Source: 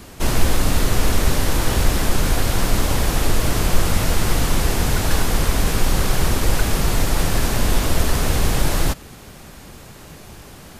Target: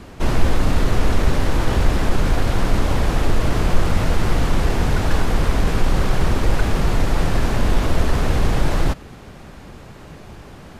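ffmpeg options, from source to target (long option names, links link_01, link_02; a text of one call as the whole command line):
ffmpeg -i in.wav -filter_complex "[0:a]aemphasis=mode=reproduction:type=75kf,asplit=2[link_01][link_02];[link_02]asoftclip=type=tanh:threshold=-17.5dB,volume=-12dB[link_03];[link_01][link_03]amix=inputs=2:normalize=0" out.wav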